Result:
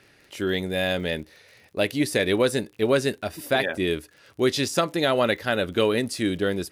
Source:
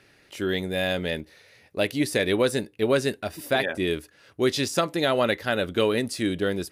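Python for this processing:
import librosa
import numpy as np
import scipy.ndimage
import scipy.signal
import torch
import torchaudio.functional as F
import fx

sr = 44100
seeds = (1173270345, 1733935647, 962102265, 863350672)

y = fx.dmg_crackle(x, sr, seeds[0], per_s=47.0, level_db=-41.0)
y = y * librosa.db_to_amplitude(1.0)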